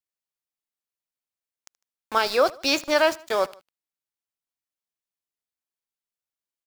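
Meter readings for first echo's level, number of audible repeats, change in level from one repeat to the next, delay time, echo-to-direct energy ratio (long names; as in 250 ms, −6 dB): −23.0 dB, 2, −5.0 dB, 76 ms, −22.0 dB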